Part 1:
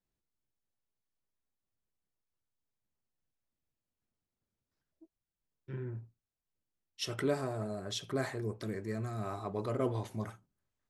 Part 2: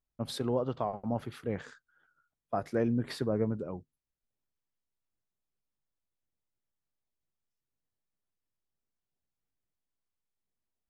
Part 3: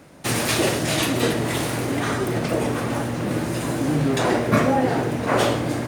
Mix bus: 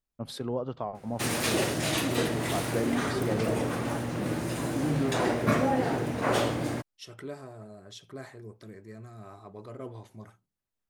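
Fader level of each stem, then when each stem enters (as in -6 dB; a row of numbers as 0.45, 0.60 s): -8.0, -1.5, -6.5 dB; 0.00, 0.00, 0.95 s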